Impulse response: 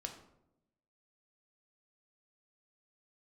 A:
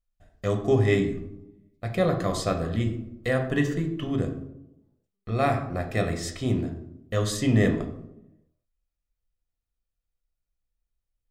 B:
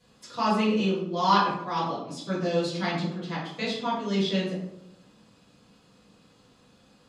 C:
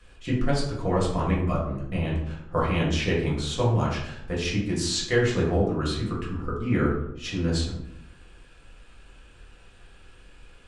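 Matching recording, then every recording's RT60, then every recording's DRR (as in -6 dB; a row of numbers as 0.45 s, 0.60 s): A; 0.85 s, 0.85 s, 0.85 s; 3.0 dB, -11.0 dB, -6.0 dB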